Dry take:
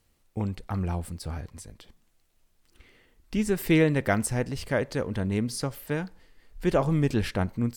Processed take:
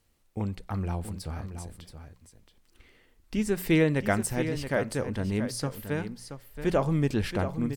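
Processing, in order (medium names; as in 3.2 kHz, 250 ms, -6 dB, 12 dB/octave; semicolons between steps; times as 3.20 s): hum notches 60/120/180 Hz; delay 676 ms -10 dB; trim -1.5 dB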